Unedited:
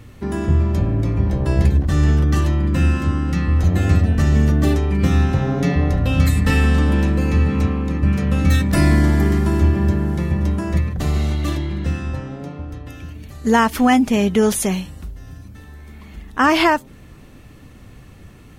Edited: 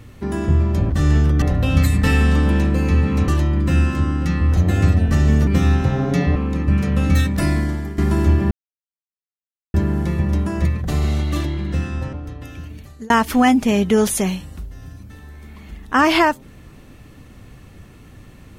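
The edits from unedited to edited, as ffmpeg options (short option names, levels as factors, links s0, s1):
-filter_complex "[0:a]asplit=10[s0][s1][s2][s3][s4][s5][s6][s7][s8][s9];[s0]atrim=end=0.902[s10];[s1]atrim=start=1.828:end=2.352[s11];[s2]atrim=start=5.848:end=7.712[s12];[s3]atrim=start=2.348:end=4.542[s13];[s4]atrim=start=4.958:end=5.852[s14];[s5]atrim=start=7.708:end=9.33,asetpts=PTS-STARTPTS,afade=t=out:st=0.722:d=0.9:silence=0.158489[s15];[s6]atrim=start=9.33:end=9.86,asetpts=PTS-STARTPTS,afade=t=in:d=0.004:c=hsin:silence=0.158489,afade=t=out:st=0.526:d=0.004:c=hsin,apad=pad_dur=1.23[s16];[s7]atrim=start=9.86:end=12.252,asetpts=PTS-STARTPTS,afade=t=in:d=0.004:c=hsin[s17];[s8]atrim=start=12.578:end=13.55,asetpts=PTS-STARTPTS,afade=t=out:st=0.622:d=0.35[s18];[s9]atrim=start=13.55,asetpts=PTS-STARTPTS,afade=t=in:d=0.004:c=hsin[s19];[s10][s11]acrossfade=d=0.004:c1=hsin:c2=hsin[s20];[s20][s12]acrossfade=d=0.004:c1=hsin:c2=hsin[s21];[s21][s13]acrossfade=d=0.004:c1=hsin:c2=hsin[s22];[s22][s14]acrossfade=d=0.004:c1=hsin:c2=hsin[s23];[s15][s16][s17]concat=n=3:v=0:a=1[s24];[s23][s24]acrossfade=d=0.004:c1=hsin:c2=hsin[s25];[s18][s19]concat=n=2:v=0:a=1[s26];[s25][s26]acrossfade=d=0.004:c1=hsin:c2=hsin"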